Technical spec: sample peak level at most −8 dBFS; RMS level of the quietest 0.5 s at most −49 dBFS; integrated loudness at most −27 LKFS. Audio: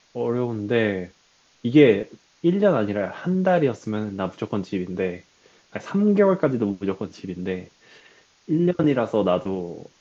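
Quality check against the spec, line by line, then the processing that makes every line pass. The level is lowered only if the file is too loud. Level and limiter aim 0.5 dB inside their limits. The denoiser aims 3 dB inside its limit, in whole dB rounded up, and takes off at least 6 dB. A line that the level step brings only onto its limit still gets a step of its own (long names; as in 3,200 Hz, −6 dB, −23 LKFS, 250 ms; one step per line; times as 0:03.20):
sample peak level −3.5 dBFS: out of spec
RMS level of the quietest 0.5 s −60 dBFS: in spec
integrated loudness −23.0 LKFS: out of spec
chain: level −4.5 dB
brickwall limiter −8.5 dBFS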